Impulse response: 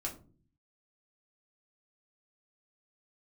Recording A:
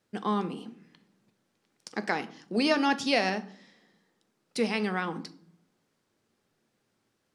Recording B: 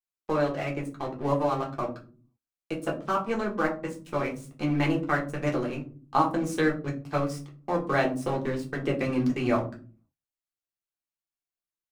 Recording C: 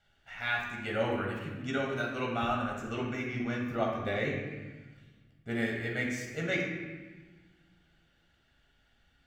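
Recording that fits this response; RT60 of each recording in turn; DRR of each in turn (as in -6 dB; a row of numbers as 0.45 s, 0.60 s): B; no single decay rate, no single decay rate, 1.2 s; 10.0 dB, -2.0 dB, -2.0 dB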